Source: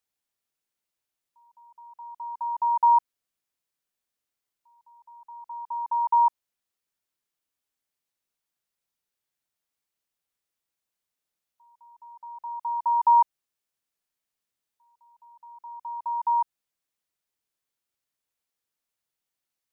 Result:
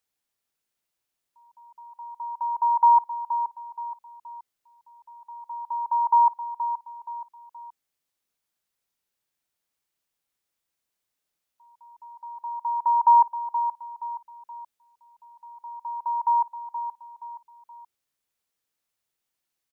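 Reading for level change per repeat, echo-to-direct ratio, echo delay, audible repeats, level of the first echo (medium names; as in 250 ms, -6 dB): -7.5 dB, -9.0 dB, 474 ms, 3, -10.0 dB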